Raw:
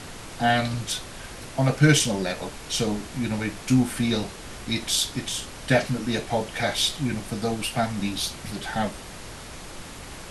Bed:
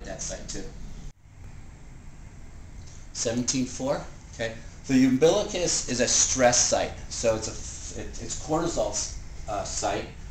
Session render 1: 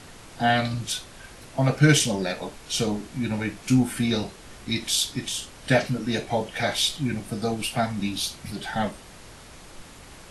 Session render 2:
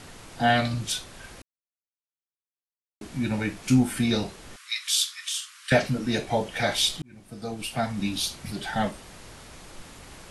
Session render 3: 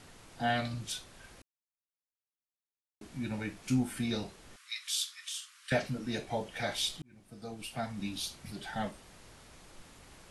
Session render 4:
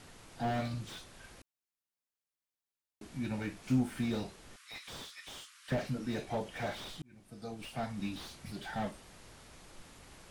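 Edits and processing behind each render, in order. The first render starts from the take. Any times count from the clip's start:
noise print and reduce 6 dB
1.42–3.01 s: mute; 4.56–5.72 s: steep high-pass 1.1 kHz 72 dB/octave; 7.02–8.10 s: fade in
trim -9.5 dB
slew-rate limiter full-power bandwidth 19 Hz

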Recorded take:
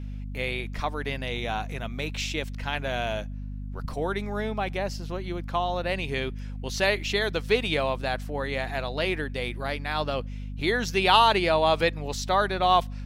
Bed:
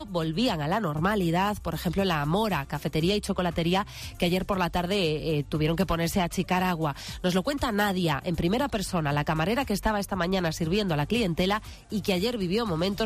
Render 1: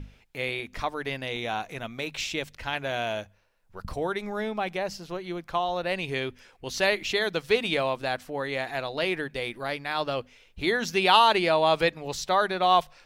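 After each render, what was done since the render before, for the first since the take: hum notches 50/100/150/200/250 Hz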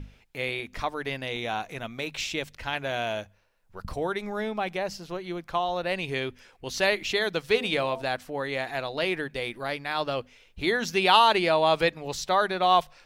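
7.51–8.02 s: de-hum 83.42 Hz, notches 13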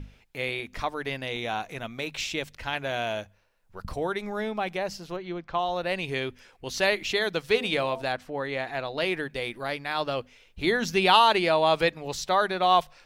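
5.16–5.59 s: distance through air 130 m; 8.12–8.98 s: low-pass 3.9 kHz 6 dB/octave; 10.64–11.14 s: bass shelf 170 Hz +8 dB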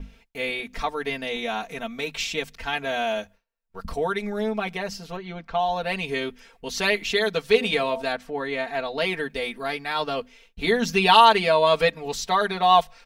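gate with hold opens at -46 dBFS; comb 4.4 ms, depth 98%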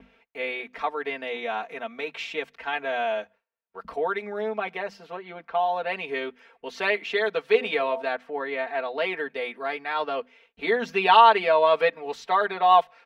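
high-pass 51 Hz; three-band isolator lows -20 dB, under 290 Hz, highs -19 dB, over 3 kHz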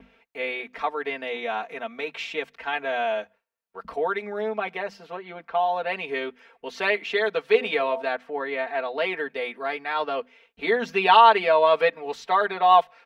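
trim +1 dB; peak limiter -3 dBFS, peak gain reduction 1 dB

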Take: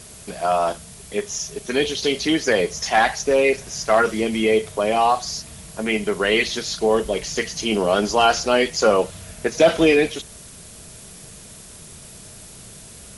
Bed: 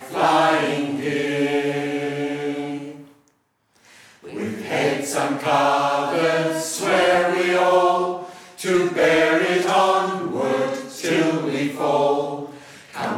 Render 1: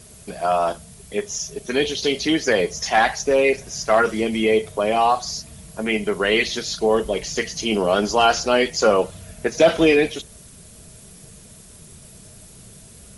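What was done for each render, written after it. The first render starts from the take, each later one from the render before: noise reduction 6 dB, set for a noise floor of -42 dBFS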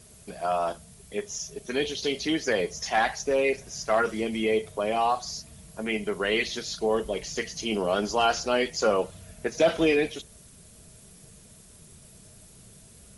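trim -7 dB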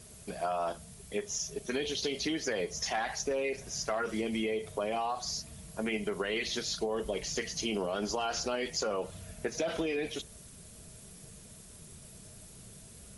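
peak limiter -19.5 dBFS, peak gain reduction 7 dB; compression, threshold -29 dBFS, peak gain reduction 6.5 dB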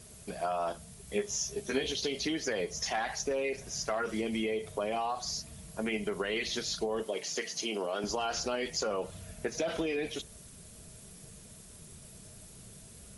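1.06–1.92 s: doubling 15 ms -3 dB; 7.03–8.04 s: high-pass 280 Hz

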